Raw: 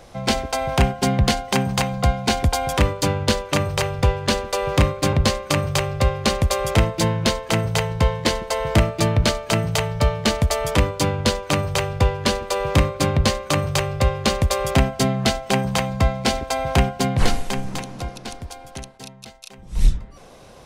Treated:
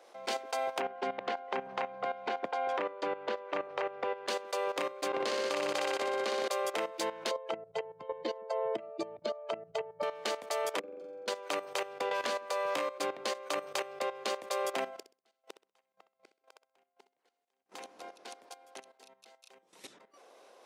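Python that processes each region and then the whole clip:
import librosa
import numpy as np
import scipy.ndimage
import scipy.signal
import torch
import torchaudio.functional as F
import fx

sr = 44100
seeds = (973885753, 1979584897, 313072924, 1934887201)

y = fx.chain(x, sr, fx.lowpass(hz=2200.0, slope=12),
    fx.band_squash(depth_pct=100), at=(0.8, 4.27))
y = fx.chain(y, sr, fx.high_shelf(hz=9800.0, db=-9.5),
    fx.room_flutter(wall_m=10.4, rt60_s=1.5), at=(5.08, 6.48))
y = fx.chain(y, sr, fx.spec_expand(power=2.1),
    fx.band_squash(depth_pct=100), at=(7.31, 10.03))
y = fx.chain(y, sr, fx.level_steps(step_db=14),
    fx.moving_average(points=46),
    fx.room_flutter(wall_m=7.6, rt60_s=0.96), at=(10.79, 11.28))
y = fx.chain(y, sr, fx.peak_eq(hz=370.0, db=-11.5, octaves=0.22),
    fx.doubler(ms=17.0, db=-6.0),
    fx.band_squash(depth_pct=100), at=(12.11, 12.98))
y = fx.chain(y, sr, fx.gate_flip(shuts_db=-17.0, range_db=-41),
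    fx.echo_feedback(ms=64, feedback_pct=25, wet_db=-12), at=(14.89, 17.72))
y = scipy.signal.sosfilt(scipy.signal.butter(4, 360.0, 'highpass', fs=sr, output='sos'), y)
y = fx.high_shelf(y, sr, hz=3100.0, db=-4.5)
y = fx.level_steps(y, sr, step_db=13)
y = F.gain(torch.from_numpy(y), -6.5).numpy()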